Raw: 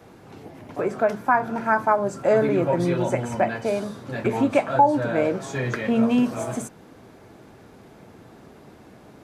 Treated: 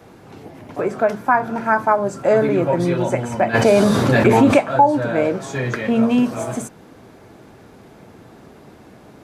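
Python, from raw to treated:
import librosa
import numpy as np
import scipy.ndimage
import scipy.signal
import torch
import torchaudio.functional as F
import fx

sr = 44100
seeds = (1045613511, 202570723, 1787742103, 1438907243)

y = fx.env_flatten(x, sr, amount_pct=70, at=(3.53, 4.57), fade=0.02)
y = y * librosa.db_to_amplitude(3.5)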